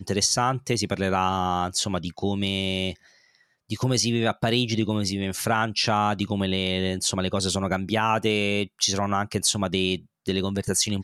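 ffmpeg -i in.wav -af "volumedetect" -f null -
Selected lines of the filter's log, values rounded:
mean_volume: -25.2 dB
max_volume: -9.1 dB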